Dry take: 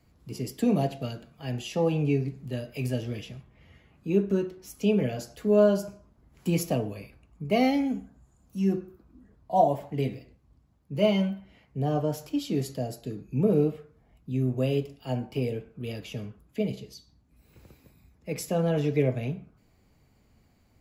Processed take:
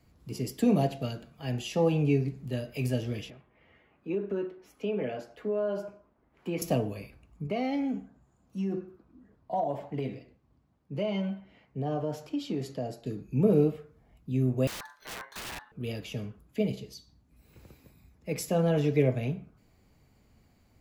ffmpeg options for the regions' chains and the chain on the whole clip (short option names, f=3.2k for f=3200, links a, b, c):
-filter_complex "[0:a]asettb=1/sr,asplit=3[a][b][c];[a]atrim=end=3.304[d];[b]atrim=start=3.3:end=6.62,asetpts=PTS-STARTPTS,afade=t=in:d=0.004:c=qsin,afade=t=out:st=3.316:d=0.004:c=qsin,acrossover=split=270 3000:gain=0.2 1 0.112[e][f][g];[e][f][g]amix=inputs=3:normalize=0,acompressor=threshold=-26dB:ratio=5:attack=3.2:release=140:knee=1:detection=peak[h];[c]atrim=start=6.616[i];[d][h]acrossfade=d=0.004:c1=hsin:c2=qsin[j];[j][i]acrossfade=d=0.004:c1=qsin:c2=hsin,asettb=1/sr,asplit=3[k][l][m];[k]atrim=end=7.474[n];[l]atrim=start=7.47:end=13.06,asetpts=PTS-STARTPTS,afade=t=in:d=0.004:c=qsin,afade=t=out:st=5.586:d=0.004:c=qsin,aemphasis=mode=reproduction:type=50fm,acompressor=threshold=-25dB:ratio=6:attack=3.2:release=140:knee=1:detection=peak,highpass=f=160:p=1[o];[m]atrim=start=13.056[p];[n][o]acrossfade=d=0.004:c1=hsin:c2=qsin[q];[q][p]acrossfade=d=0.004:c1=qsin:c2=hsin,asettb=1/sr,asplit=3[r][s][t];[r]atrim=end=14.674[u];[s]atrim=start=14.67:end=15.72,asetpts=PTS-STARTPTS,afade=t=in:d=0.004:c=qsin,afade=t=out:st=1.046:d=0.004:c=qsin,equalizer=f=110:w=0.82:g=-12.5,aeval=exprs='(mod(39.8*val(0)+1,2)-1)/39.8':c=same,aeval=exprs='val(0)*sin(2*PI*1300*n/s)':c=same[v];[t]atrim=start=15.716[w];[u][v]acrossfade=d=0.004:c1=hsin:c2=qsin[x];[x][w]acrossfade=d=0.004:c1=qsin:c2=hsin"